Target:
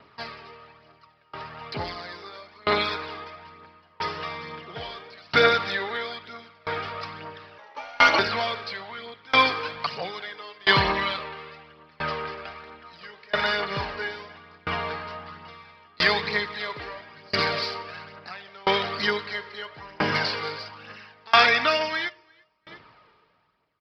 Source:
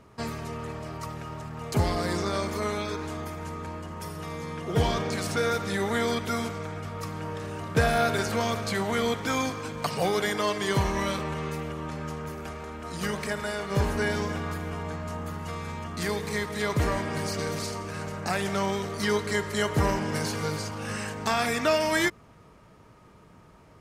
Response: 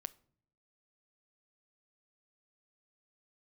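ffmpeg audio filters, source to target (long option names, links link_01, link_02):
-filter_complex "[0:a]dynaudnorm=framelen=780:gausssize=5:maxgain=7.5dB,aecho=1:1:346|692:0.0708|0.0241,asplit=2[link_01][link_02];[1:a]atrim=start_sample=2205,lowshelf=frequency=88:gain=11.5[link_03];[link_02][link_03]afir=irnorm=-1:irlink=0,volume=15dB[link_04];[link_01][link_04]amix=inputs=2:normalize=0,aresample=11025,aresample=44100,asettb=1/sr,asplit=3[link_05][link_06][link_07];[link_05]atrim=end=7.584[link_08];[link_06]atrim=start=7.58:end=8.19,asetpts=PTS-STARTPTS,afade=type=in:duration=0.004:curve=qsin,afade=type=out:start_time=0.606:duration=0.004:curve=qsin,aeval=exprs='val(0)*sin(2*PI*730*n/s)':channel_layout=same[link_09];[link_07]atrim=start=8.186[link_10];[link_08][link_09]acrossfade=duration=0.004:curve1=hsin:curve2=qsin[link_11];[link_11][link_10]acrossfade=duration=0.004:curve1=qsin:curve2=hsin,highpass=frequency=1400:poles=1,aphaser=in_gain=1:out_gain=1:delay=2.6:decay=0.37:speed=1.1:type=triangular,aeval=exprs='val(0)*pow(10,-30*if(lt(mod(0.75*n/s,1),2*abs(0.75)/1000),1-mod(0.75*n/s,1)/(2*abs(0.75)/1000),(mod(0.75*n/s,1)-2*abs(0.75)/1000)/(1-2*abs(0.75)/1000))/20)':channel_layout=same,volume=-4.5dB"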